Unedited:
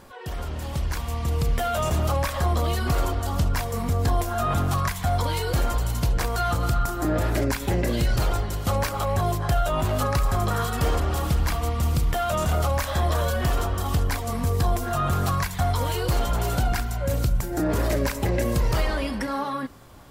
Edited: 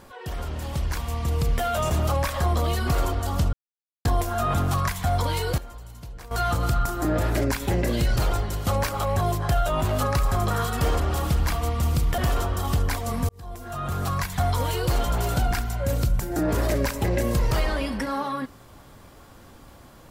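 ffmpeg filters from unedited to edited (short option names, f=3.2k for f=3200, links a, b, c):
-filter_complex "[0:a]asplit=7[a][b][c][d][e][f][g];[a]atrim=end=3.53,asetpts=PTS-STARTPTS,afade=t=out:st=3.526:d=0.004:c=hsin[h];[b]atrim=start=3.53:end=4.05,asetpts=PTS-STARTPTS,volume=0[i];[c]atrim=start=4.05:end=5.58,asetpts=PTS-STARTPTS,afade=t=in:d=0.004:c=hsin,afade=t=out:st=1.41:d=0.12:c=log:silence=0.149624[j];[d]atrim=start=5.58:end=6.31,asetpts=PTS-STARTPTS,volume=-16.5dB[k];[e]atrim=start=6.31:end=12.182,asetpts=PTS-STARTPTS,afade=t=in:d=0.12:c=log:silence=0.149624[l];[f]atrim=start=13.388:end=14.5,asetpts=PTS-STARTPTS,afade=t=out:st=1.108:d=0.004:c=hsin[m];[g]atrim=start=14.5,asetpts=PTS-STARTPTS,afade=t=in:d=1.09[n];[h][i][j][k][l]concat=n=5:v=0:a=1[o];[m][n]concat=n=2:v=0:a=1[p];[o][p]acrossfade=d=0.004:c1=hsin:c2=hsin"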